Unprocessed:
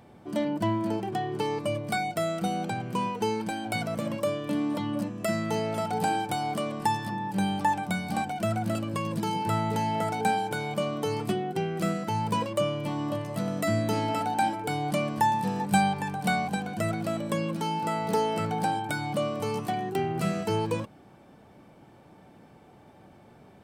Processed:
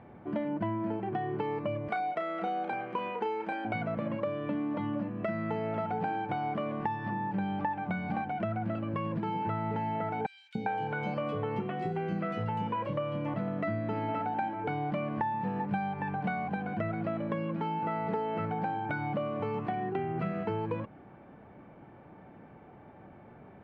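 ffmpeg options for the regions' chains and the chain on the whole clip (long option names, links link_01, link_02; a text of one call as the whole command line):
ffmpeg -i in.wav -filter_complex "[0:a]asettb=1/sr,asplit=3[link_01][link_02][link_03];[link_01]atrim=end=1.884[link_04];[link_02]atrim=start=1.88:end=3.65,asetpts=PTS-STARTPTS,afade=type=in:duration=0.004:curve=qsin,afade=type=out:start_time=1.766:duration=0.004:curve=qsin,highpass=370,equalizer=frequency=8200:width_type=o:width=0.98:gain=5,asplit=2[link_05][link_06];[link_06]adelay=34,volume=-5.5dB[link_07];[link_05][link_07]amix=inputs=2:normalize=0,atrim=end_sample=78057[link_08];[link_03]atrim=start=3.646[link_09];[link_04][link_08]acrossfade=duration=0.004:curve1=hsin:curve2=qsin[link_10];[link_10][link_09]acrossfade=duration=0.004:curve1=qsin:curve2=hsin,asettb=1/sr,asplit=3[link_11][link_12][link_13];[link_11]atrim=end=10.264[link_14];[link_12]atrim=start=10.26:end=13.34,asetpts=PTS-STARTPTS,afade=type=in:duration=0.004:curve=qsin,afade=type=out:start_time=3.076:duration=0.004:curve=qsin,aeval=exprs='val(0)+0.00708*sin(2*PI*500*n/s)':channel_layout=same,highshelf=frequency=5200:gain=11.5,acrossover=split=400|3100[link_15][link_16][link_17];[link_15]adelay=290[link_18];[link_16]adelay=400[link_19];[link_18][link_19][link_17]amix=inputs=3:normalize=0,atrim=end_sample=135828[link_20];[link_13]atrim=start=13.336[link_21];[link_14][link_20]acrossfade=duration=0.004:curve1=hsin:curve2=qsin[link_22];[link_22][link_21]acrossfade=duration=0.004:curve1=qsin:curve2=hsin,lowpass=frequency=2200:width=0.5412,lowpass=frequency=2200:width=1.3066,aemphasis=mode=production:type=50fm,acompressor=threshold=-31dB:ratio=6,volume=1.5dB" out.wav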